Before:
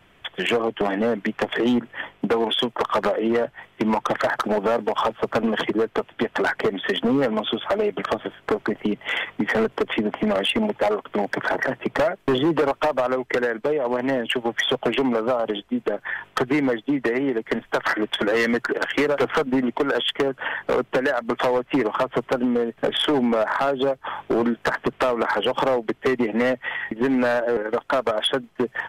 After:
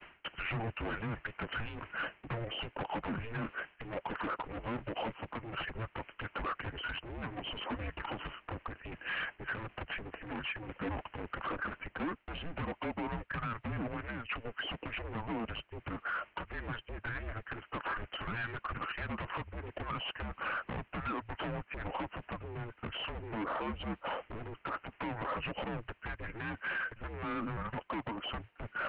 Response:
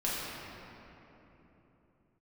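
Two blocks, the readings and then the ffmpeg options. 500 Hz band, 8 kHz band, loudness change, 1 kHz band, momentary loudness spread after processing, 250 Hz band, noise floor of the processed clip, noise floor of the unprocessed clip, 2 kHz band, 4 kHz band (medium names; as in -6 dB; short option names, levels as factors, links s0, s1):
-23.0 dB, under -35 dB, -16.5 dB, -13.5 dB, 6 LU, -18.5 dB, -67 dBFS, -56 dBFS, -12.5 dB, -16.0 dB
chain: -af "crystalizer=i=5:c=0,asubboost=boost=11.5:cutoff=130,areverse,acompressor=threshold=0.02:ratio=6,areverse,agate=range=0.0224:threshold=0.00282:ratio=3:detection=peak,aresample=11025,asoftclip=type=hard:threshold=0.015,aresample=44100,highpass=f=350:t=q:w=0.5412,highpass=f=350:t=q:w=1.307,lowpass=f=3100:t=q:w=0.5176,lowpass=f=3100:t=q:w=0.7071,lowpass=f=3100:t=q:w=1.932,afreqshift=-340,volume=1.58"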